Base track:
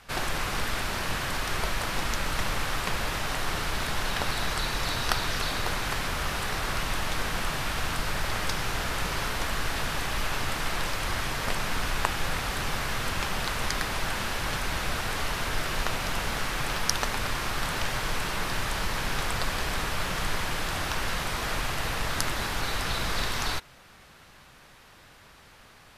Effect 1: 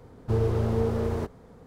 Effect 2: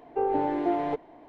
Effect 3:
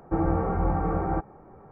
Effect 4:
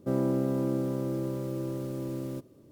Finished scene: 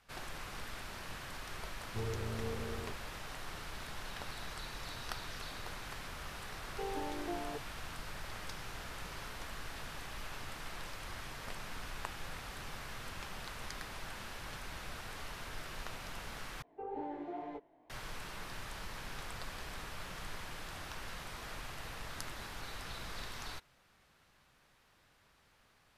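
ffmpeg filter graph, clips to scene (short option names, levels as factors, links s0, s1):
-filter_complex "[2:a]asplit=2[s0][s1];[0:a]volume=0.168[s2];[s1]flanger=delay=16.5:depth=5.6:speed=2.2[s3];[s2]asplit=2[s4][s5];[s4]atrim=end=16.624[s6];[s3]atrim=end=1.28,asetpts=PTS-STARTPTS,volume=0.237[s7];[s5]atrim=start=17.896[s8];[1:a]atrim=end=1.66,asetpts=PTS-STARTPTS,volume=0.178,afade=t=in:d=0.004:c=hsin,afade=t=out:st=1.656:d=0.004:c=hsin,adelay=1660[s9];[s0]atrim=end=1.28,asetpts=PTS-STARTPTS,volume=0.188,afade=t=in:d=0.004:c=hsin,afade=t=out:st=1.276:d=0.004:c=hsin,adelay=6620[s10];[s6][s7]acrossfade=d=0.004:c1=hsin:c2=hsin[s11];[s11][s8]acrossfade=d=0.004:c1=hsin:c2=hsin[s12];[s12][s9][s10]amix=inputs=3:normalize=0"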